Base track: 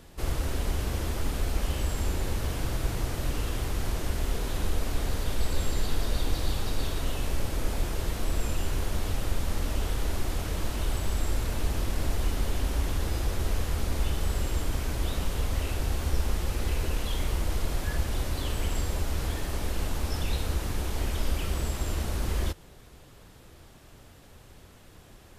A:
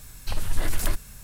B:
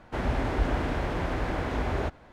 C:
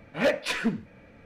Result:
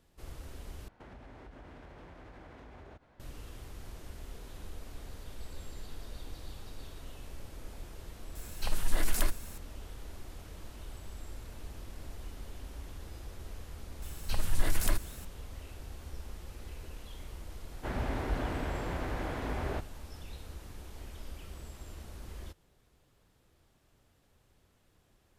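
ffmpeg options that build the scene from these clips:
ffmpeg -i bed.wav -i cue0.wav -i cue1.wav -filter_complex "[2:a]asplit=2[link_01][link_02];[1:a]asplit=2[link_03][link_04];[0:a]volume=-16.5dB[link_05];[link_01]acompressor=threshold=-37dB:ratio=6:attack=3.2:release=140:knee=1:detection=peak[link_06];[link_03]equalizer=frequency=86:width_type=o:width=0.77:gain=-14.5[link_07];[link_05]asplit=2[link_08][link_09];[link_08]atrim=end=0.884[link_10];[link_06]atrim=end=2.32,asetpts=PTS-STARTPTS,volume=-11dB[link_11];[link_09]atrim=start=3.196[link_12];[link_07]atrim=end=1.23,asetpts=PTS-STARTPTS,volume=-3dB,afade=type=in:duration=0.004:curve=hsin,afade=type=out:start_time=1.226:duration=0.004:curve=hsin,adelay=8350[link_13];[link_04]atrim=end=1.23,asetpts=PTS-STARTPTS,volume=-3.5dB,afade=type=in:duration=0.004:curve=hsin,afade=type=out:start_time=1.226:duration=0.004:curve=hsin,adelay=14020[link_14];[link_02]atrim=end=2.32,asetpts=PTS-STARTPTS,volume=-6.5dB,afade=type=in:duration=0.004:curve=hsin,afade=type=out:start_time=2.316:duration=0.004:curve=hsin,adelay=17710[link_15];[link_10][link_11]acrossfade=duration=0.004:curve1=hsin:curve2=hsin[link_16];[link_16][link_12]acrossfade=duration=0.004:curve1=hsin:curve2=hsin[link_17];[link_17][link_13][link_14][link_15]amix=inputs=4:normalize=0" out.wav

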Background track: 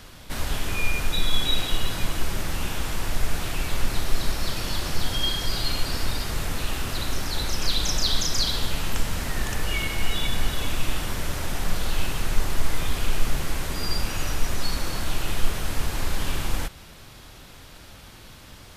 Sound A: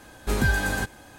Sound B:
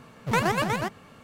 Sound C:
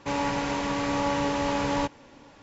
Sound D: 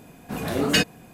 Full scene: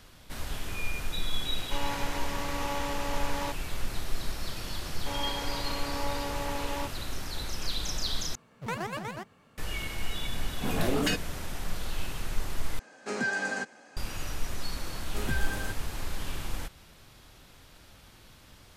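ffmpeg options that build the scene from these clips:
ffmpeg -i bed.wav -i cue0.wav -i cue1.wav -i cue2.wav -i cue3.wav -filter_complex "[3:a]asplit=2[link_01][link_02];[1:a]asplit=2[link_03][link_04];[0:a]volume=-8.5dB[link_05];[link_01]highpass=frequency=530:poles=1[link_06];[link_02]highpass=330[link_07];[4:a]acompressor=threshold=-22dB:ratio=6:attack=3.2:release=140:knee=1:detection=peak[link_08];[link_03]highpass=frequency=220:width=0.5412,highpass=frequency=220:width=1.3066,equalizer=frequency=320:width_type=q:width=4:gain=-8,equalizer=frequency=980:width_type=q:width=4:gain=-5,equalizer=frequency=3500:width_type=q:width=4:gain=-10,lowpass=frequency=7200:width=0.5412,lowpass=frequency=7200:width=1.3066[link_09];[link_05]asplit=3[link_10][link_11][link_12];[link_10]atrim=end=8.354[link_13];[2:a]atrim=end=1.23,asetpts=PTS-STARTPTS,volume=-10.5dB[link_14];[link_11]atrim=start=9.576:end=12.794[link_15];[link_09]atrim=end=1.18,asetpts=PTS-STARTPTS,volume=-3dB[link_16];[link_12]atrim=start=13.966[link_17];[link_06]atrim=end=2.42,asetpts=PTS-STARTPTS,volume=-5dB,afade=type=in:duration=0.004:curve=hsin,afade=type=out:start_time=2.416:duration=0.004:curve=hsin,adelay=1650[link_18];[link_07]atrim=end=2.42,asetpts=PTS-STARTPTS,volume=-7.5dB,afade=type=in:duration=0.004:curve=hsin,afade=type=out:start_time=2.416:duration=0.004:curve=hsin,adelay=5000[link_19];[link_08]atrim=end=1.13,asetpts=PTS-STARTPTS,volume=-1.5dB,afade=type=in:duration=0.004:curve=hsin,afade=type=out:start_time=1.126:duration=0.004:curve=hsin,adelay=10330[link_20];[link_04]atrim=end=1.18,asetpts=PTS-STARTPTS,volume=-10dB,afade=type=in:duration=0.004:curve=hsin,afade=type=out:start_time=1.176:duration=0.004:curve=hsin,adelay=14870[link_21];[link_13][link_14]acrossfade=duration=0.004:curve1=hsin:curve2=hsin[link_22];[link_22][link_15]acrossfade=duration=0.004:curve1=hsin:curve2=hsin[link_23];[link_23][link_16]acrossfade=duration=0.004:curve1=hsin:curve2=hsin[link_24];[link_24][link_17]acrossfade=duration=0.004:curve1=hsin:curve2=hsin[link_25];[link_25][link_18][link_19][link_20][link_21]amix=inputs=5:normalize=0" out.wav

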